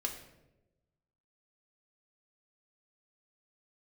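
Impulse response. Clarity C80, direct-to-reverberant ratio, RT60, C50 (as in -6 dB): 10.0 dB, 1.5 dB, 1.0 s, 8.0 dB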